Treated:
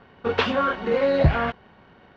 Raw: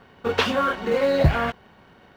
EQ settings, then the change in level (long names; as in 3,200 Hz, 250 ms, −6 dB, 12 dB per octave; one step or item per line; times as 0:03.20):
Bessel low-pass filter 3,700 Hz, order 4
0.0 dB